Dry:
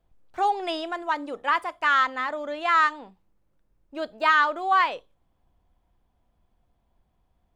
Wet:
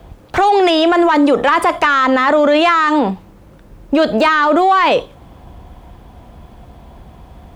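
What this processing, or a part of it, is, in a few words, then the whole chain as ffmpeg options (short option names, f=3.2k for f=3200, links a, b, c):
mastering chain: -filter_complex "[0:a]highpass=47,equalizer=f=3.2k:t=o:w=1.8:g=2.5,acrossover=split=400|1100|5600[a][b][c][d];[a]acompressor=threshold=-38dB:ratio=4[e];[b]acompressor=threshold=-36dB:ratio=4[f];[c]acompressor=threshold=-31dB:ratio=4[g];[d]acompressor=threshold=-52dB:ratio=4[h];[e][f][g][h]amix=inputs=4:normalize=0,acompressor=threshold=-31dB:ratio=2.5,asoftclip=type=tanh:threshold=-25dB,tiltshelf=f=1.4k:g=3.5,alimiter=level_in=35dB:limit=-1dB:release=50:level=0:latency=1,volume=-4.5dB"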